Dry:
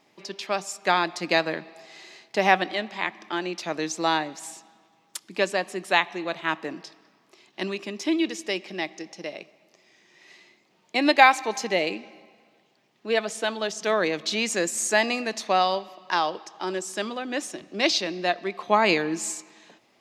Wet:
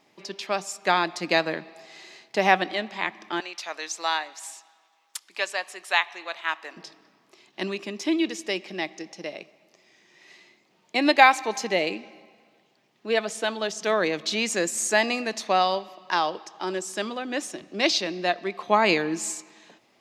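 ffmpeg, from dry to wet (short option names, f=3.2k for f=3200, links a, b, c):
-filter_complex "[0:a]asettb=1/sr,asplit=3[a][b][c];[a]atrim=end=3.404[d];[b]atrim=start=3.4:end=6.77,asetpts=PTS-STARTPTS,afade=t=in:d=0.004:c=qsin,afade=t=out:st=3.366:d=0.004:c=qsin,highpass=850[e];[c]atrim=start=6.766[f];[d][e]acrossfade=d=0.004:c1=hsin:c2=qsin[g];[g][f]acrossfade=d=0.004:c1=qsin:c2=hsin"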